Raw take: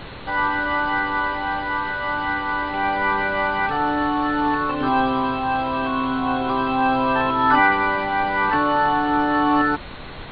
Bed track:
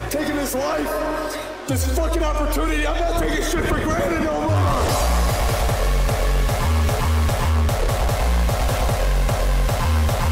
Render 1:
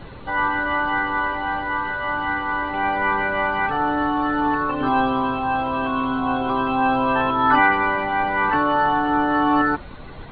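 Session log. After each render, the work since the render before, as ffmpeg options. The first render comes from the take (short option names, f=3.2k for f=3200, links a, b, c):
-af "afftdn=nr=10:nf=-35"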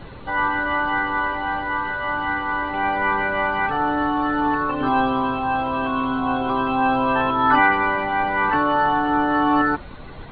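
-af anull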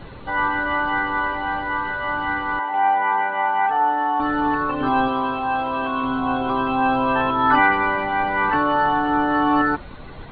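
-filter_complex "[0:a]asettb=1/sr,asplit=3[a][b][c];[a]atrim=end=2.594[d];[b]atrim=start=2.59:end=4.2,asetpts=PTS-STARTPTS,afade=t=in:d=0.004:c=qsin,afade=t=out:st=1.606:d=0.004:c=qsin,highpass=340,equalizer=f=340:t=q:w=4:g=-10,equalizer=f=570:t=q:w=4:g=-6,equalizer=f=820:t=q:w=4:g=9,equalizer=f=1.3k:t=q:w=4:g=-7,equalizer=f=2.4k:t=q:w=4:g=-6,lowpass=f=3.1k:w=0.5412,lowpass=f=3.1k:w=1.3066[e];[c]atrim=start=4.196[f];[d][e]acrossfade=d=0.004:c1=hsin:c2=qsin[g];[g][f]acrossfade=d=0.004:c1=qsin:c2=hsin,asettb=1/sr,asplit=3[h][i][j];[h]atrim=end=5.084[k];[i]atrim=start=5.08:end=6.03,asetpts=PTS-STARTPTS,afade=t=in:d=0.004:c=qsin,afade=t=out:st=0.946:d=0.004:c=qsin,bass=f=250:g=-6,treble=f=4k:g=1[l];[j]atrim=start=6.026[m];[k][l]acrossfade=d=0.004:c1=hsin:c2=qsin[n];[n][m]acrossfade=d=0.004:c1=qsin:c2=hsin"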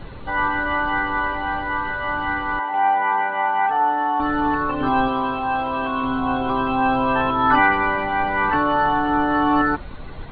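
-af "lowshelf=f=68:g=6.5"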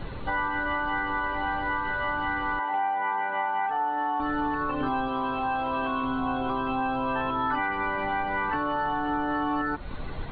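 -af "acompressor=threshold=-25dB:ratio=6"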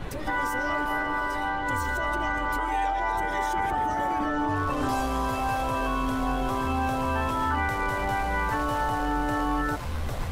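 -filter_complex "[1:a]volume=-14.5dB[a];[0:a][a]amix=inputs=2:normalize=0"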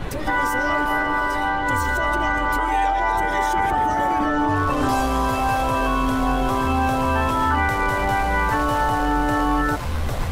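-af "volume=6.5dB"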